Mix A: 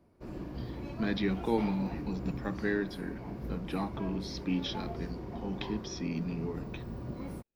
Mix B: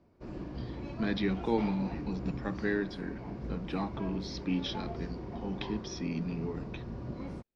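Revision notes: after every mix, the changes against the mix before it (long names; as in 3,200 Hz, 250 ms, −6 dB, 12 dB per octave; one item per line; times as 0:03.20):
master: add low-pass filter 6,700 Hz 24 dB per octave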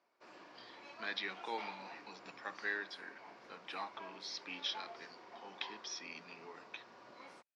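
master: add high-pass filter 1,000 Hz 12 dB per octave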